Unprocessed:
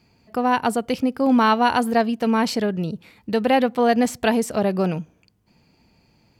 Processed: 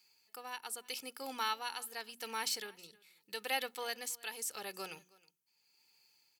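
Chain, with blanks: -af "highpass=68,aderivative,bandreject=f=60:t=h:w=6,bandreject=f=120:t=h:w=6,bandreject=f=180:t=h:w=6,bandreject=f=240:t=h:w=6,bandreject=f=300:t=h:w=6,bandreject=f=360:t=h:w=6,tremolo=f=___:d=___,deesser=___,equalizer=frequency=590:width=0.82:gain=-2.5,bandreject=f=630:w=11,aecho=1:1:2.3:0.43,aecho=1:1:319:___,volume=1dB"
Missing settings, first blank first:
0.83, 0.63, 0.65, 0.0668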